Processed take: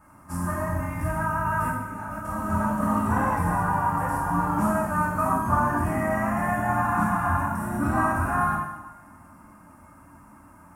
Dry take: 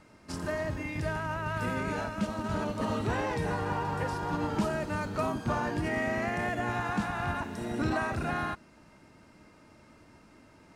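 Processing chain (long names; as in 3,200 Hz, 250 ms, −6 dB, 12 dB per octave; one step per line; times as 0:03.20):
drawn EQ curve 270 Hz 0 dB, 410 Hz −12 dB, 1,100 Hz +8 dB, 4,000 Hz −22 dB, 11,000 Hz +11 dB
0:01.68–0:02.25: compressor whose output falls as the input rises −42 dBFS, ratio −1
coupled-rooms reverb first 0.96 s, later 2.8 s, from −24 dB, DRR −7 dB
level −1.5 dB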